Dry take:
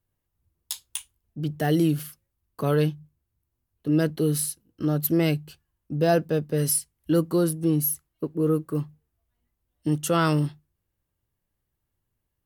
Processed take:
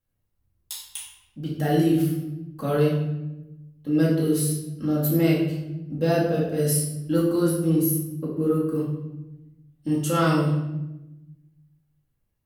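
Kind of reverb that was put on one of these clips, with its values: simulated room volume 400 m³, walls mixed, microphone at 2.2 m; trim -5.5 dB

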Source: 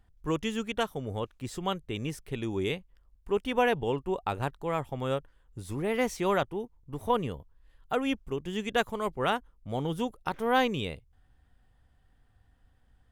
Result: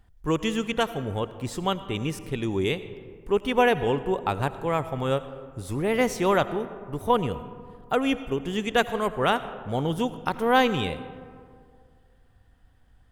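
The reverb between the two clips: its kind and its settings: algorithmic reverb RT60 2.1 s, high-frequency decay 0.4×, pre-delay 45 ms, DRR 13 dB; trim +5 dB

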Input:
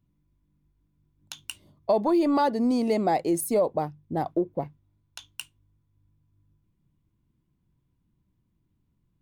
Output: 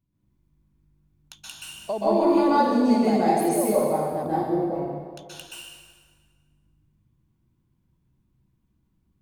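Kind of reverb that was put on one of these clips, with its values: plate-style reverb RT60 1.7 s, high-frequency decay 0.8×, pre-delay 115 ms, DRR -9.5 dB; trim -6.5 dB

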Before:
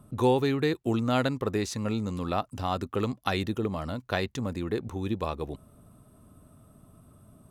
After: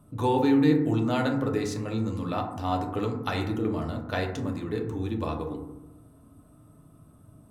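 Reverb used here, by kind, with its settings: FDN reverb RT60 0.91 s, low-frequency decay 1.5×, high-frequency decay 0.3×, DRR 0.5 dB; trim -3.5 dB

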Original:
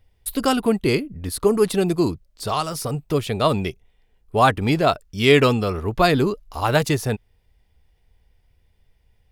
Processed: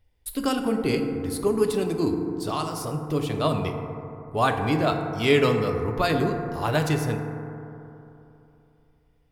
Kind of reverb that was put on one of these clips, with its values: FDN reverb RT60 3 s, high-frequency decay 0.25×, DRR 3.5 dB; trim -6.5 dB

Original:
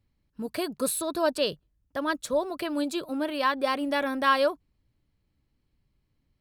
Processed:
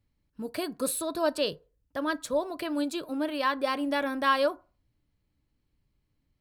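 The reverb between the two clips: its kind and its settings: FDN reverb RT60 0.36 s, low-frequency decay 0.7×, high-frequency decay 0.5×, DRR 15 dB; trim -2 dB

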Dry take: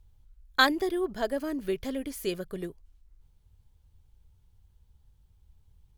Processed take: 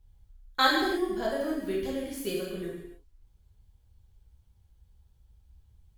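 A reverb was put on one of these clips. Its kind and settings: gated-style reverb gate 340 ms falling, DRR -5 dB; trim -6 dB

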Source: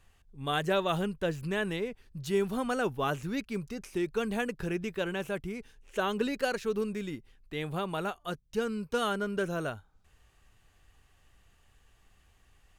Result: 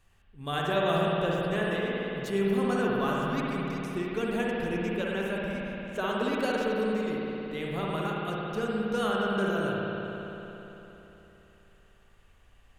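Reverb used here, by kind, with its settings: spring tank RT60 3.6 s, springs 56 ms, chirp 50 ms, DRR -4 dB; trim -2.5 dB

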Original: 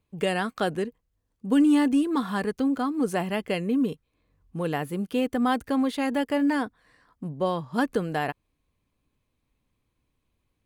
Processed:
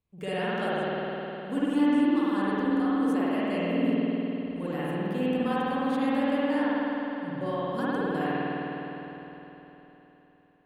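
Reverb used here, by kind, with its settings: spring tank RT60 3.8 s, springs 51 ms, chirp 70 ms, DRR -10 dB; trim -11.5 dB

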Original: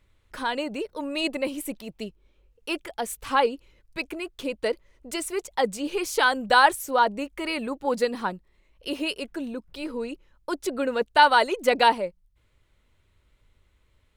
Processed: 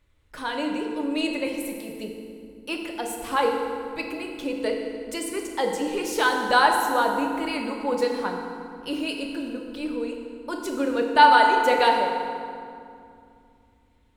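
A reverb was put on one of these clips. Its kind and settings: FDN reverb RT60 2.4 s, low-frequency decay 1.55×, high-frequency decay 0.65×, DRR 1 dB; trim -2.5 dB

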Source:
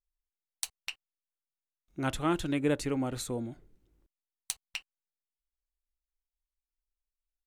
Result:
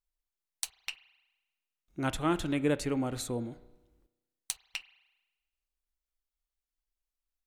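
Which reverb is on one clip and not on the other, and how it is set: spring tank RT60 1.1 s, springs 33 ms, chirp 20 ms, DRR 16 dB

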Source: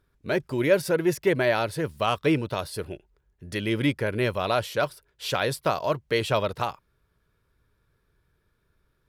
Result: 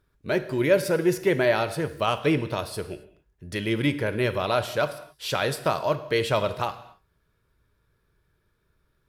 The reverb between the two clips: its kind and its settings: gated-style reverb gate 300 ms falling, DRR 10 dB

